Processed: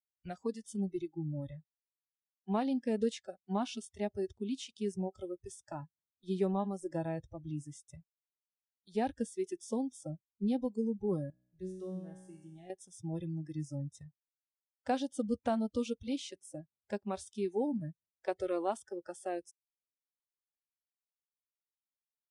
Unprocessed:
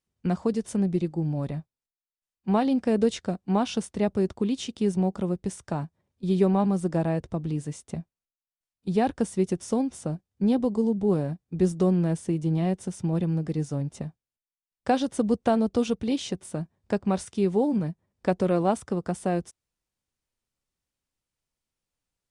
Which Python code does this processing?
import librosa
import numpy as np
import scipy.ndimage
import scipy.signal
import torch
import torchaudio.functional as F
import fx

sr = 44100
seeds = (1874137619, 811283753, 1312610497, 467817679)

y = fx.noise_reduce_blind(x, sr, reduce_db=24)
y = fx.comb_fb(y, sr, f0_hz=62.0, decay_s=1.1, harmonics='all', damping=0.0, mix_pct=90, at=(11.3, 12.7))
y = y * 10.0 ** (-9.0 / 20.0)